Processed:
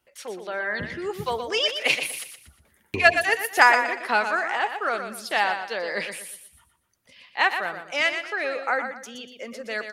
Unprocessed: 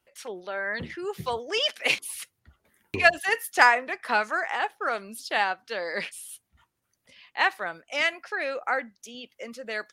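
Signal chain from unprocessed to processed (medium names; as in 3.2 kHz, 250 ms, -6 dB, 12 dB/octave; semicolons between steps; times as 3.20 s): feedback delay 120 ms, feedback 32%, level -8 dB; trim +2 dB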